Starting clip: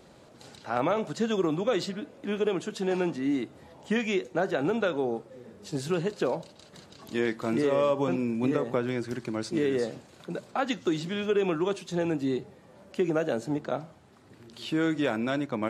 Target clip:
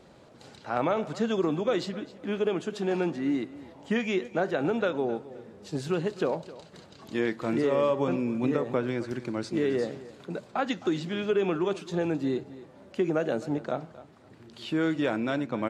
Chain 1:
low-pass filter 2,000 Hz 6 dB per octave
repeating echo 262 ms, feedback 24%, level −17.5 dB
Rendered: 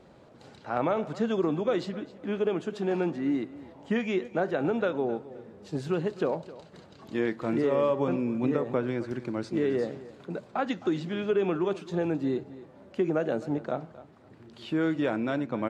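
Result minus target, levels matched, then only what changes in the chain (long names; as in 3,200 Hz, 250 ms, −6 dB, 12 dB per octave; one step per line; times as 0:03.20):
4,000 Hz band −4.0 dB
change: low-pass filter 5,000 Hz 6 dB per octave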